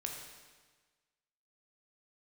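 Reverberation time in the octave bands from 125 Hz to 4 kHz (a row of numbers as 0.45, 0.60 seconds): 1.5, 1.4, 1.4, 1.4, 1.4, 1.3 seconds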